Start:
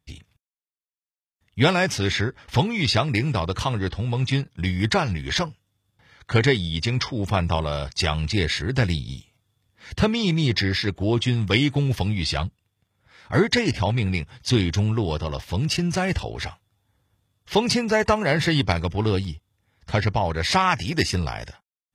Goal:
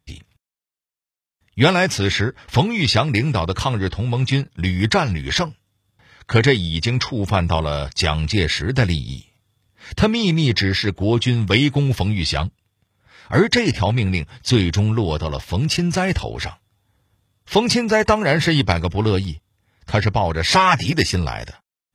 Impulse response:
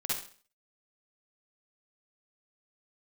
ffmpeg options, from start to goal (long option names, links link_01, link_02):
-filter_complex "[0:a]asettb=1/sr,asplit=3[link_01][link_02][link_03];[link_01]atrim=end=20.474[link_04];[link_02]atrim=start=20.47:end=20.93,asetpts=PTS-STARTPTS,afade=type=in:duration=0.004:curve=qsin,afade=type=out:start_time=0.456:duration=0.004:curve=qsin,aecho=1:1:7.3:0.84,atrim=end_sample=20286[link_05];[link_03]atrim=start=20.926[link_06];[link_04][link_05]acrossfade=duration=0.004:curve1=hsin:curve2=qsin[link_07];[link_07][link_06]acrossfade=duration=0.004:curve1=qsin:curve2=hsin,volume=4dB"